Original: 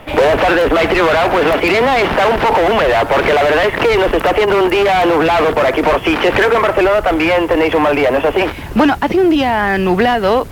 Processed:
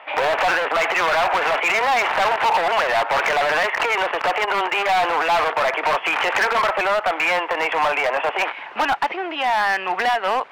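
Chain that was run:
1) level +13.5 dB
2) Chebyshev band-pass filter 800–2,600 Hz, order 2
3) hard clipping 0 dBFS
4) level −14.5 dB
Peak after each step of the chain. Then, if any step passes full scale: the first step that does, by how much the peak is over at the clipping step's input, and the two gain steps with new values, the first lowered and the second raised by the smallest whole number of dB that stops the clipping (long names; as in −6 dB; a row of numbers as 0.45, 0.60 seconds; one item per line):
+9.5, +10.0, 0.0, −14.5 dBFS
step 1, 10.0 dB
step 1 +3.5 dB, step 4 −4.5 dB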